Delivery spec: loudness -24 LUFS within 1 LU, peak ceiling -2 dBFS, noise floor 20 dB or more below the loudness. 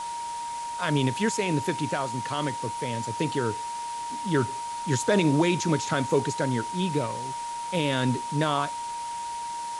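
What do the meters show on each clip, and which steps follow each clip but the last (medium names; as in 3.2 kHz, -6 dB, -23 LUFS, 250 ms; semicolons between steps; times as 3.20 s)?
steady tone 940 Hz; tone level -31 dBFS; noise floor -34 dBFS; noise floor target -48 dBFS; loudness -27.5 LUFS; peak level -9.5 dBFS; loudness target -24.0 LUFS
-> band-stop 940 Hz, Q 30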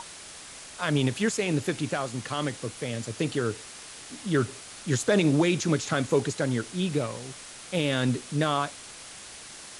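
steady tone not found; noise floor -45 dBFS; noise floor target -48 dBFS
-> noise reduction 6 dB, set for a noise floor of -45 dBFS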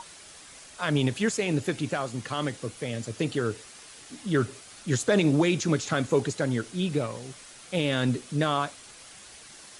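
noise floor -49 dBFS; loudness -27.5 LUFS; peak level -11.0 dBFS; loudness target -24.0 LUFS
-> trim +3.5 dB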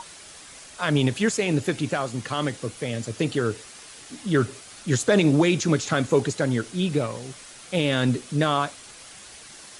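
loudness -24.0 LUFS; peak level -7.5 dBFS; noise floor -45 dBFS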